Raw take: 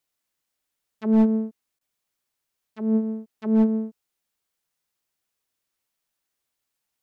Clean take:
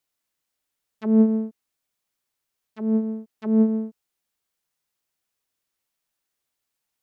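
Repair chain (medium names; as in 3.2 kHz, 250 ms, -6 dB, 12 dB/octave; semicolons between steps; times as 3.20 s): clip repair -13 dBFS; interpolate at 1.79 s, 19 ms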